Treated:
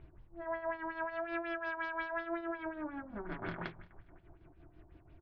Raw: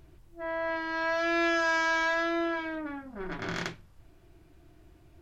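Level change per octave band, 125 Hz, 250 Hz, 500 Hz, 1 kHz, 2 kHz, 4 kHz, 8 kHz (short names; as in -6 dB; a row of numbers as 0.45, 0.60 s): -5.5 dB, -8.5 dB, -8.0 dB, -8.5 dB, -12.0 dB, -18.5 dB, n/a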